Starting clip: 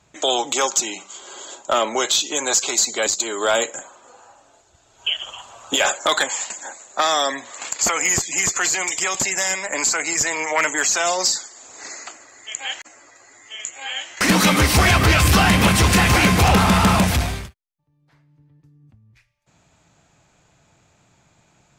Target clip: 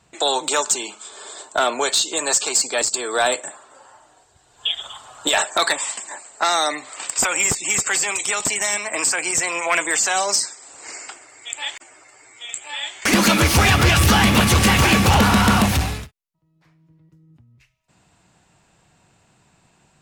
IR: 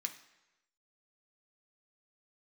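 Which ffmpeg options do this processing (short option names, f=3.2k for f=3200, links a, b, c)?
-af "asetrate=48000,aresample=44100"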